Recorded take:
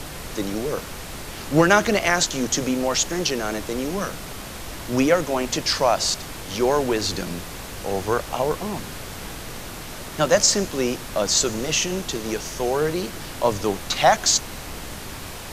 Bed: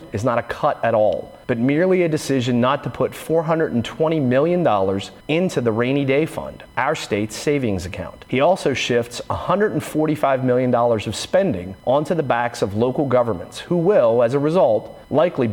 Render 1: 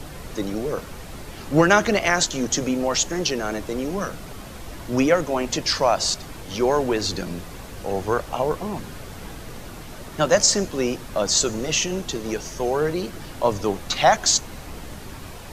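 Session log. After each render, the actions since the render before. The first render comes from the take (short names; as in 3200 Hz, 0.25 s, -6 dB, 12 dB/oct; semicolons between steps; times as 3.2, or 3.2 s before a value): denoiser 7 dB, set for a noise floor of -35 dBFS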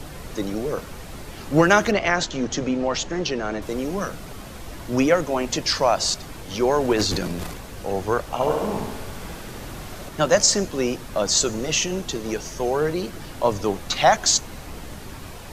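1.91–3.62 air absorption 110 m; 6.81–7.59 transient shaper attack +6 dB, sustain +11 dB; 8.34–10.09 flutter echo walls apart 11.8 m, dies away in 1.1 s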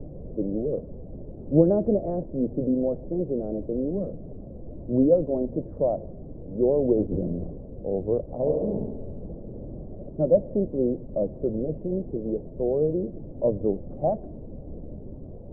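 Chebyshev low-pass 580 Hz, order 4; notches 50/100 Hz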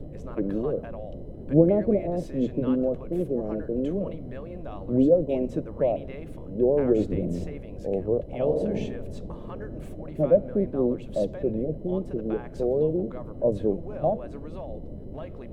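add bed -24 dB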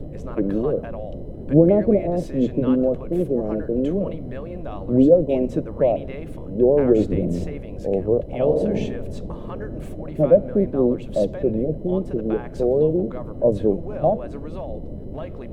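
gain +5.5 dB; limiter -3 dBFS, peak gain reduction 2.5 dB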